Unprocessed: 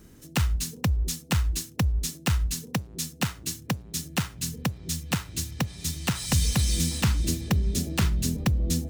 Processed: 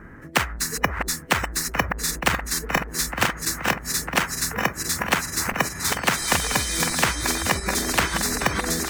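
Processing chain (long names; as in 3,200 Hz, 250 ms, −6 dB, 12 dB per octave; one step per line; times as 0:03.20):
feedback delay that plays each chunk backwards 691 ms, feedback 69%, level −4.5 dB
drawn EQ curve 390 Hz 0 dB, 1,800 Hz +14 dB, 3,500 Hz −21 dB
noise reduction from a noise print of the clip's start 21 dB
in parallel at −2 dB: downward compressor, threshold −30 dBFS, peak gain reduction 13.5 dB
on the sum: every bin compressed towards the loudest bin 4 to 1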